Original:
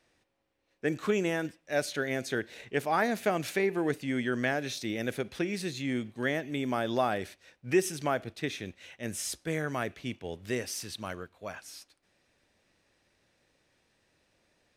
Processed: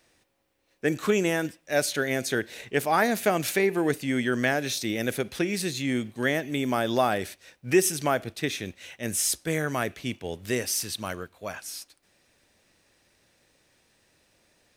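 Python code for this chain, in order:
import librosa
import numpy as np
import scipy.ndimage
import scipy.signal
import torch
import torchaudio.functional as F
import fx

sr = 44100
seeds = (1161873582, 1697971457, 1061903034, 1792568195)

y = fx.high_shelf(x, sr, hz=7200.0, db=10.5)
y = y * 10.0 ** (4.5 / 20.0)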